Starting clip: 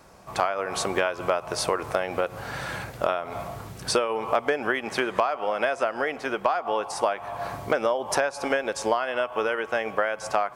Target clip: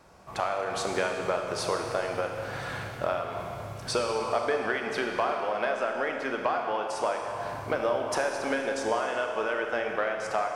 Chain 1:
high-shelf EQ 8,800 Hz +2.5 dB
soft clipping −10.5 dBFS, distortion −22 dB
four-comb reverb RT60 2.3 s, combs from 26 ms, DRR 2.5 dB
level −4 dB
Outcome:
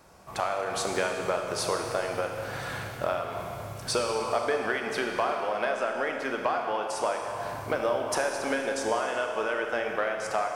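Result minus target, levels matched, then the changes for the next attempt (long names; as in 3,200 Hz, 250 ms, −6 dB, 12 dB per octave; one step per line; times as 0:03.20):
8,000 Hz band +3.5 dB
change: high-shelf EQ 8,800 Hz −7.5 dB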